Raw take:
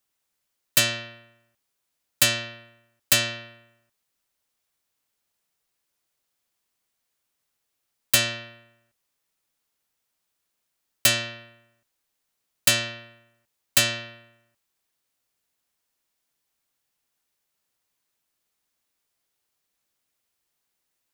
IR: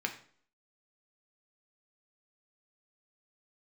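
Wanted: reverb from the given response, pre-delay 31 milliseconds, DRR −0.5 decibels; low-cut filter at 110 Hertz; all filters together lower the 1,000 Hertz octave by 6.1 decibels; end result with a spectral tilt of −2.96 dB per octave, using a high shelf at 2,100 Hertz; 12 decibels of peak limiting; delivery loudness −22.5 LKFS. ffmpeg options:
-filter_complex "[0:a]highpass=110,equalizer=frequency=1000:width_type=o:gain=-7.5,highshelf=frequency=2100:gain=-6.5,alimiter=limit=-22.5dB:level=0:latency=1,asplit=2[link_01][link_02];[1:a]atrim=start_sample=2205,adelay=31[link_03];[link_02][link_03]afir=irnorm=-1:irlink=0,volume=-4dB[link_04];[link_01][link_04]amix=inputs=2:normalize=0,volume=10dB"

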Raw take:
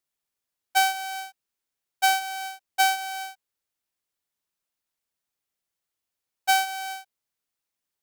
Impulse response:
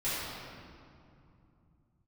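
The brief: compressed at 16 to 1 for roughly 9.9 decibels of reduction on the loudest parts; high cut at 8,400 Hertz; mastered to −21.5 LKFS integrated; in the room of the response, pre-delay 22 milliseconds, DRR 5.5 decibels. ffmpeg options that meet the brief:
-filter_complex "[0:a]lowpass=8400,acompressor=threshold=-26dB:ratio=16,asplit=2[link_01][link_02];[1:a]atrim=start_sample=2205,adelay=22[link_03];[link_02][link_03]afir=irnorm=-1:irlink=0,volume=-14dB[link_04];[link_01][link_04]amix=inputs=2:normalize=0,volume=10dB"

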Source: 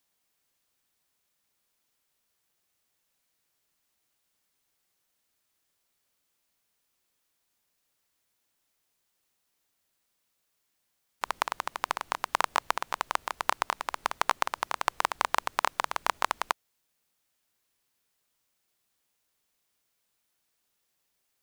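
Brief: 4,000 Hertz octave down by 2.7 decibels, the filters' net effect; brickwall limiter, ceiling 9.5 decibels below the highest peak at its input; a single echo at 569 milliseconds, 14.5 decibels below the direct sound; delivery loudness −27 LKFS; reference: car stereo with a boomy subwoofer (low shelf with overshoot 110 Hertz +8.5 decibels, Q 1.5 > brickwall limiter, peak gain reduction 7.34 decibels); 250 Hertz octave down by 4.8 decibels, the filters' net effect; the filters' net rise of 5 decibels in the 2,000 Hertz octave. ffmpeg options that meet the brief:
ffmpeg -i in.wav -af "equalizer=frequency=250:width_type=o:gain=-5.5,equalizer=frequency=2000:width_type=o:gain=8,equalizer=frequency=4000:width_type=o:gain=-7,alimiter=limit=-12.5dB:level=0:latency=1,lowshelf=frequency=110:width_type=q:width=1.5:gain=8.5,aecho=1:1:569:0.188,volume=14dB,alimiter=limit=-5.5dB:level=0:latency=1" out.wav

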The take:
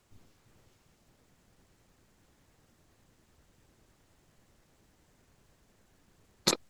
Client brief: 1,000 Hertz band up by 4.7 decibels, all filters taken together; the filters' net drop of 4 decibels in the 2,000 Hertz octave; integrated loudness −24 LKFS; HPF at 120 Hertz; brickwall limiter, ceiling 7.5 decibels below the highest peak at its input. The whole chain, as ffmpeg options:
ffmpeg -i in.wav -af "highpass=120,equalizer=frequency=1000:width_type=o:gain=8,equalizer=frequency=2000:width_type=o:gain=-7.5,volume=12dB,alimiter=limit=-3.5dB:level=0:latency=1" out.wav

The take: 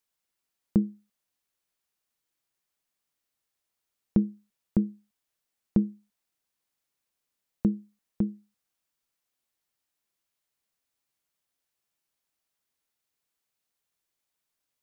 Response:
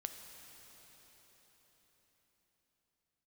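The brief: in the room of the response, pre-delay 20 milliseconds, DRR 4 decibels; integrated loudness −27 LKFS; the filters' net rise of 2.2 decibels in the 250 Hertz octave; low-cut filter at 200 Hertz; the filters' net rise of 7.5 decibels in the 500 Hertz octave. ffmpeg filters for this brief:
-filter_complex "[0:a]highpass=200,equalizer=frequency=250:width_type=o:gain=4.5,equalizer=frequency=500:width_type=o:gain=9,asplit=2[link_01][link_02];[1:a]atrim=start_sample=2205,adelay=20[link_03];[link_02][link_03]afir=irnorm=-1:irlink=0,volume=-2dB[link_04];[link_01][link_04]amix=inputs=2:normalize=0,volume=-0.5dB"

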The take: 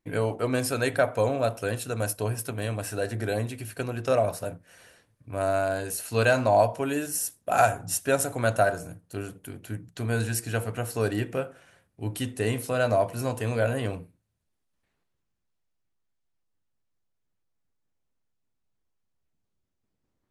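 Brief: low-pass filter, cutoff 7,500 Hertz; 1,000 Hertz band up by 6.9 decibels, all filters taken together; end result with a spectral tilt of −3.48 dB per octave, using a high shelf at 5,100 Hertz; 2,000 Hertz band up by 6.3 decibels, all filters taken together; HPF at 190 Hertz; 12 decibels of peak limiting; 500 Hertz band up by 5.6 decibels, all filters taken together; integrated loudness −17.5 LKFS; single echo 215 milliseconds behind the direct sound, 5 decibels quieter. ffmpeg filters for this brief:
ffmpeg -i in.wav -af "highpass=190,lowpass=7500,equalizer=frequency=500:width_type=o:gain=4,equalizer=frequency=1000:width_type=o:gain=7.5,equalizer=frequency=2000:width_type=o:gain=4,highshelf=frequency=5100:gain=8,alimiter=limit=-14dB:level=0:latency=1,aecho=1:1:215:0.562,volume=8dB" out.wav

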